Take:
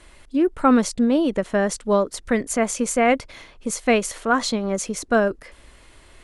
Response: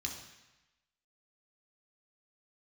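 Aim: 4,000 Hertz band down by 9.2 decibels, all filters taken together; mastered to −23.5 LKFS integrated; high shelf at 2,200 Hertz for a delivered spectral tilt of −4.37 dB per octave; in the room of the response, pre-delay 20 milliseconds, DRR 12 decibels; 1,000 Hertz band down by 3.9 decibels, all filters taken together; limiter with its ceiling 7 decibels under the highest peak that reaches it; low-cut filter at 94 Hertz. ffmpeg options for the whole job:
-filter_complex "[0:a]highpass=94,equalizer=frequency=1000:width_type=o:gain=-4.5,highshelf=frequency=2200:gain=-4.5,equalizer=frequency=4000:width_type=o:gain=-7.5,alimiter=limit=-15.5dB:level=0:latency=1,asplit=2[link_01][link_02];[1:a]atrim=start_sample=2205,adelay=20[link_03];[link_02][link_03]afir=irnorm=-1:irlink=0,volume=-12dB[link_04];[link_01][link_04]amix=inputs=2:normalize=0,volume=2dB"

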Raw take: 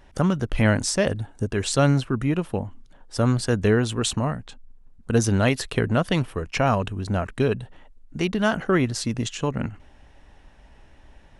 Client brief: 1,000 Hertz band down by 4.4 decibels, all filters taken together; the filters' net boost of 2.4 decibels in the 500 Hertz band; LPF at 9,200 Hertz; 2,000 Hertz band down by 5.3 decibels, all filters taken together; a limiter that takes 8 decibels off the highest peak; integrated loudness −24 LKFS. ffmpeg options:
ffmpeg -i in.wav -af "lowpass=9200,equalizer=frequency=500:width_type=o:gain=5,equalizer=frequency=1000:width_type=o:gain=-7.5,equalizer=frequency=2000:width_type=o:gain=-4.5,volume=1.5dB,alimiter=limit=-12dB:level=0:latency=1" out.wav

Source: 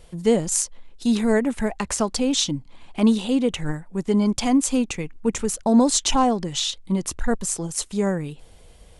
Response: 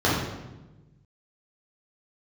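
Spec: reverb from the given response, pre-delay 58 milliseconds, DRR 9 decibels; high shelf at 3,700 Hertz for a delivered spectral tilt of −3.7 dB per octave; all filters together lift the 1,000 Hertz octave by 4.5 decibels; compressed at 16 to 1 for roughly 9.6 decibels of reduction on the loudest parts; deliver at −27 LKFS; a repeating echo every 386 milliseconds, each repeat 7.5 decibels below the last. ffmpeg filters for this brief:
-filter_complex "[0:a]equalizer=frequency=1000:width_type=o:gain=5.5,highshelf=frequency=3700:gain=6.5,acompressor=threshold=-21dB:ratio=16,aecho=1:1:386|772|1158|1544|1930:0.422|0.177|0.0744|0.0312|0.0131,asplit=2[link_01][link_02];[1:a]atrim=start_sample=2205,adelay=58[link_03];[link_02][link_03]afir=irnorm=-1:irlink=0,volume=-27dB[link_04];[link_01][link_04]amix=inputs=2:normalize=0,volume=-2.5dB"

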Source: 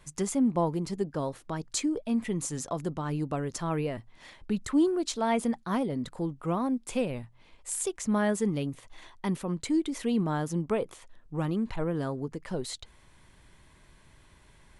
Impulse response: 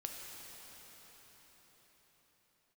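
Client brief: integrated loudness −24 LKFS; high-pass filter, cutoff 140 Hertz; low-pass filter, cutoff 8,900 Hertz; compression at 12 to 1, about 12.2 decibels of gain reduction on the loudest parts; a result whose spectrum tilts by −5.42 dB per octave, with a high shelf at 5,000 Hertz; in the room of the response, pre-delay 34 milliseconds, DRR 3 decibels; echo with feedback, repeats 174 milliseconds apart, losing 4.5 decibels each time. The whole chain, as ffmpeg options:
-filter_complex "[0:a]highpass=140,lowpass=8900,highshelf=frequency=5000:gain=-7.5,acompressor=threshold=-33dB:ratio=12,aecho=1:1:174|348|522|696|870|1044|1218|1392|1566:0.596|0.357|0.214|0.129|0.0772|0.0463|0.0278|0.0167|0.01,asplit=2[link_01][link_02];[1:a]atrim=start_sample=2205,adelay=34[link_03];[link_02][link_03]afir=irnorm=-1:irlink=0,volume=-2dB[link_04];[link_01][link_04]amix=inputs=2:normalize=0,volume=11.5dB"

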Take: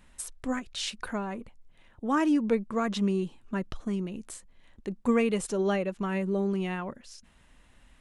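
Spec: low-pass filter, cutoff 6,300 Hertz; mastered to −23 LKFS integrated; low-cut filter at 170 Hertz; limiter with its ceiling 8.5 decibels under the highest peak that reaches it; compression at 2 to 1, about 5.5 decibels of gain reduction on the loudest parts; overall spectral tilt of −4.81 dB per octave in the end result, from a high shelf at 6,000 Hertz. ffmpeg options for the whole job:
ffmpeg -i in.wav -af "highpass=170,lowpass=6300,highshelf=frequency=6000:gain=-8.5,acompressor=threshold=-31dB:ratio=2,volume=15dB,alimiter=limit=-13.5dB:level=0:latency=1" out.wav

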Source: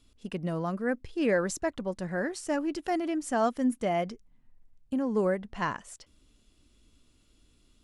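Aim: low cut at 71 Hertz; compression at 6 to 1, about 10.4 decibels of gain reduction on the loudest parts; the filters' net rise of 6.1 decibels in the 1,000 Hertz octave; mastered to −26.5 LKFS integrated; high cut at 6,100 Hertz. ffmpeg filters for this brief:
ffmpeg -i in.wav -af "highpass=71,lowpass=6100,equalizer=frequency=1000:width_type=o:gain=8.5,acompressor=threshold=-30dB:ratio=6,volume=8.5dB" out.wav

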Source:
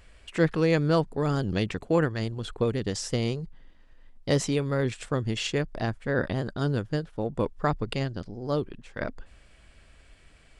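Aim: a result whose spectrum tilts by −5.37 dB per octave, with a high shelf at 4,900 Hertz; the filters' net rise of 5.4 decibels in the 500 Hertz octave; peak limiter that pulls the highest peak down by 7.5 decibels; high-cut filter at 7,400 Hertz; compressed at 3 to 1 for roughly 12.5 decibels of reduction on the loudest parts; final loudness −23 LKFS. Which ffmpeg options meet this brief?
ffmpeg -i in.wav -af "lowpass=7400,equalizer=frequency=500:width_type=o:gain=6,highshelf=frequency=4900:gain=6,acompressor=threshold=-32dB:ratio=3,volume=13dB,alimiter=limit=-12dB:level=0:latency=1" out.wav

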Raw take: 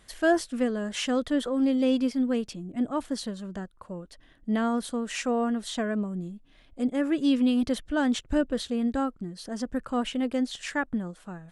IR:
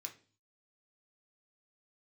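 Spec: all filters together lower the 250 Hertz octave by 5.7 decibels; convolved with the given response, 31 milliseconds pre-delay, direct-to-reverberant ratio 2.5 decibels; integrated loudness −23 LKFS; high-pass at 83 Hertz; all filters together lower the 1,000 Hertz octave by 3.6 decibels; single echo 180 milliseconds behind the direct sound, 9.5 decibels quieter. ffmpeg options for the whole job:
-filter_complex "[0:a]highpass=83,equalizer=frequency=250:width_type=o:gain=-6,equalizer=frequency=1000:width_type=o:gain=-5,aecho=1:1:180:0.335,asplit=2[link_01][link_02];[1:a]atrim=start_sample=2205,adelay=31[link_03];[link_02][link_03]afir=irnorm=-1:irlink=0,volume=1.5dB[link_04];[link_01][link_04]amix=inputs=2:normalize=0,volume=7.5dB"

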